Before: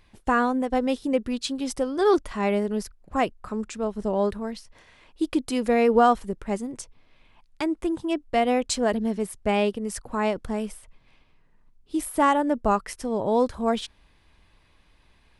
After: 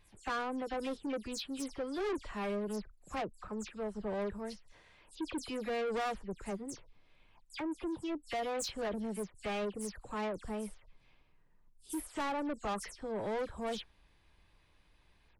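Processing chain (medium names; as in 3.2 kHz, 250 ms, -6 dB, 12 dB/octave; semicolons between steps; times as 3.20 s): delay that grows with frequency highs early, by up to 105 ms; saturation -25 dBFS, distortion -8 dB; trim -7.5 dB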